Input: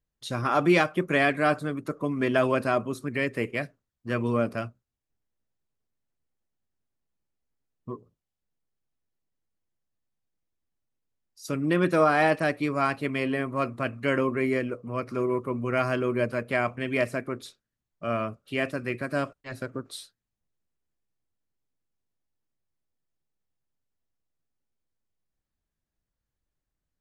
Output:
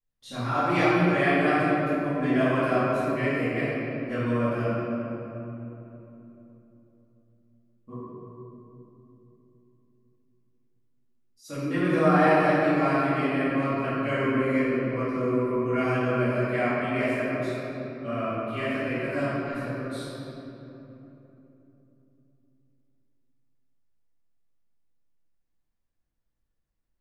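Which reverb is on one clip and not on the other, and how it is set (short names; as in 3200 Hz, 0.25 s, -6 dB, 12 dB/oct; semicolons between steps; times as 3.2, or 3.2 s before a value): shoebox room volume 180 m³, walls hard, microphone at 2.3 m; gain -13.5 dB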